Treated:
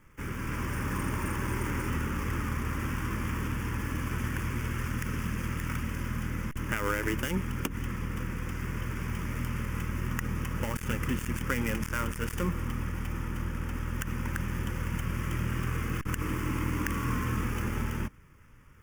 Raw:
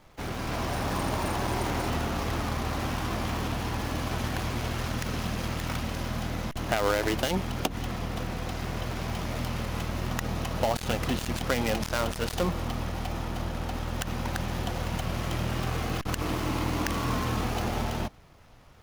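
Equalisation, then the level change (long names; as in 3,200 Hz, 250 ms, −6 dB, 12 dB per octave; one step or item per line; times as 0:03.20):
phaser with its sweep stopped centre 1,700 Hz, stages 4
0.0 dB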